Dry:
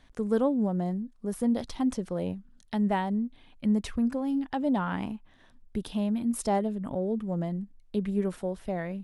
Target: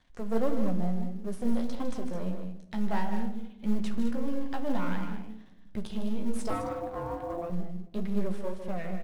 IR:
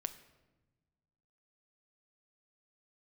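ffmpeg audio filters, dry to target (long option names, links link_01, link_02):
-filter_complex "[0:a]aeval=exprs='if(lt(val(0),0),0.251*val(0),val(0))':channel_layout=same,lowpass=9000,aecho=1:1:154.5|209.9:0.316|0.316,asettb=1/sr,asplit=3[link_01][link_02][link_03];[link_01]atrim=end=6.504[link_04];[link_02]atrim=start=6.5:end=7.5,asetpts=PTS-STARTPTS,afade=type=in:duration=0.004:curve=qsin,afade=type=out:start_time=0.996:duration=0.004:curve=qsin,aeval=exprs='val(0)*sin(2*PI*510*n/s)':channel_layout=same[link_05];[link_03]atrim=start=7.496[link_06];[link_04][link_05]acrossfade=duration=0.004:curve1=hsin:curve2=qsin[link_07];[link_07][link_06]acrossfade=duration=0.004:curve1=qsin:curve2=hsin,flanger=delay=9.5:depth=9.1:regen=-30:speed=1.6:shape=sinusoidal,asplit=2[link_08][link_09];[link_09]acrusher=bits=5:mode=log:mix=0:aa=0.000001,volume=-6.5dB[link_10];[link_08][link_10]amix=inputs=2:normalize=0[link_11];[1:a]atrim=start_sample=2205,asetrate=52920,aresample=44100[link_12];[link_11][link_12]afir=irnorm=-1:irlink=0,volume=2.5dB"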